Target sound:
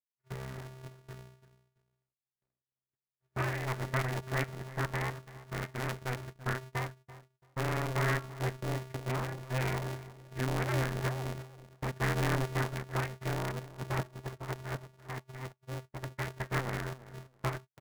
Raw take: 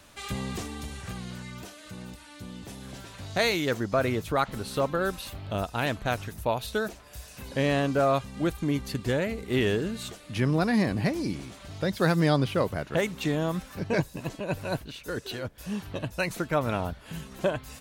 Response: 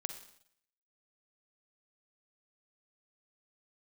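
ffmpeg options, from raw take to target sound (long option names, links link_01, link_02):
-filter_complex "[0:a]aresample=11025,aeval=exprs='abs(val(0))':channel_layout=same,aresample=44100,bandreject=frequency=247.4:width_type=h:width=4,bandreject=frequency=494.8:width_type=h:width=4,bandreject=frequency=742.2:width_type=h:width=4,bandreject=frequency=989.6:width_type=h:width=4,bandreject=frequency=1237:width_type=h:width=4,bandreject=frequency=1484.4:width_type=h:width=4,bandreject=frequency=1731.8:width_type=h:width=4,bandreject=frequency=1979.2:width_type=h:width=4,bandreject=frequency=2226.6:width_type=h:width=4,bandreject=frequency=2474:width_type=h:width=4,bandreject=frequency=2721.4:width_type=h:width=4,bandreject=frequency=2968.8:width_type=h:width=4,bandreject=frequency=3216.2:width_type=h:width=4,bandreject=frequency=3463.6:width_type=h:width=4,bandreject=frequency=3711:width_type=h:width=4,bandreject=frequency=3958.4:width_type=h:width=4,bandreject=frequency=4205.8:width_type=h:width=4,bandreject=frequency=4453.2:width_type=h:width=4,bandreject=frequency=4700.6:width_type=h:width=4,bandreject=frequency=4948:width_type=h:width=4,bandreject=frequency=5195.4:width_type=h:width=4,bandreject=frequency=5442.8:width_type=h:width=4,bandreject=frequency=5690.2:width_type=h:width=4,bandreject=frequency=5937.6:width_type=h:width=4,bandreject=frequency=6185:width_type=h:width=4,bandreject=frequency=6432.4:width_type=h:width=4,bandreject=frequency=6679.8:width_type=h:width=4,agate=range=-39dB:threshold=-36dB:ratio=16:detection=peak,highshelf=frequency=2500:width_type=q:width=3:gain=-9.5,afftdn=noise_reduction=18:noise_floor=-36,asplit=2[link_01][link_02];[link_02]adelay=336,lowpass=frequency=1600:poles=1,volume=-16dB,asplit=2[link_03][link_04];[link_04]adelay=336,lowpass=frequency=1600:poles=1,volume=0.22[link_05];[link_03][link_05]amix=inputs=2:normalize=0[link_06];[link_01][link_06]amix=inputs=2:normalize=0,aeval=exprs='val(0)*sgn(sin(2*PI*130*n/s))':channel_layout=same,volume=-8dB"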